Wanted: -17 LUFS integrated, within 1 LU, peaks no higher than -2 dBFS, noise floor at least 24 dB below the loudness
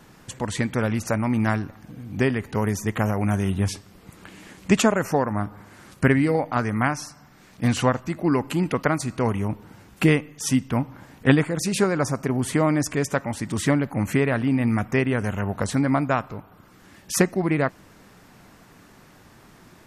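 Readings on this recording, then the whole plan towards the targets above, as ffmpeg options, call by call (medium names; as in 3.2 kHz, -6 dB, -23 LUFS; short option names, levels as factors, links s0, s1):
loudness -23.5 LUFS; peak level -4.0 dBFS; loudness target -17.0 LUFS
-> -af "volume=2.11,alimiter=limit=0.794:level=0:latency=1"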